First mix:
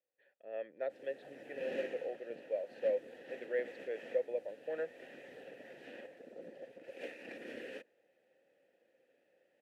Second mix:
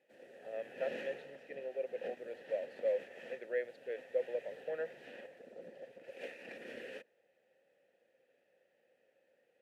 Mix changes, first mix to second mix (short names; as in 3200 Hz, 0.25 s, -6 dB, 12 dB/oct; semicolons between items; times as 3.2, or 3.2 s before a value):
background: entry -0.80 s; master: add bell 300 Hz -7 dB 0.47 oct